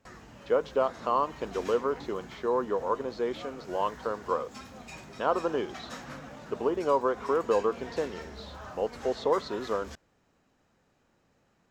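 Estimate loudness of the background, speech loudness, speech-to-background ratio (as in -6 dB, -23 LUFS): -45.0 LUFS, -30.5 LUFS, 14.5 dB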